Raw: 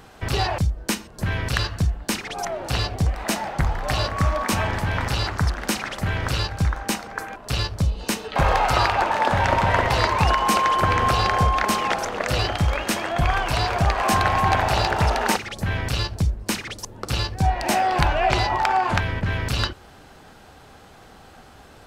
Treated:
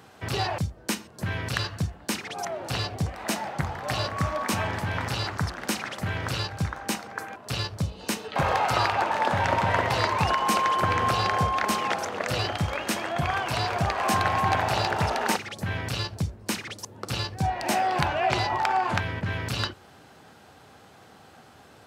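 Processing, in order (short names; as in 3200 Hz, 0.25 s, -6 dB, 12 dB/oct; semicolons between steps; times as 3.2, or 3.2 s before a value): HPF 86 Hz 24 dB/oct; gain -4 dB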